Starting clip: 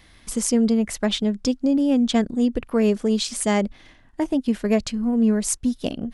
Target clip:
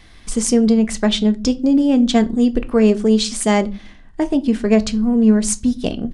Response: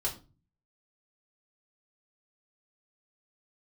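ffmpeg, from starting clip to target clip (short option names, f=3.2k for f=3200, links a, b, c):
-filter_complex "[0:a]asplit=2[a][b];[b]bass=f=250:g=5,treble=f=4k:g=4[c];[1:a]atrim=start_sample=2205,highshelf=f=8.8k:g=-12[d];[c][d]afir=irnorm=-1:irlink=0,volume=-11dB[e];[a][e]amix=inputs=2:normalize=0,aresample=22050,aresample=44100,volume=2.5dB"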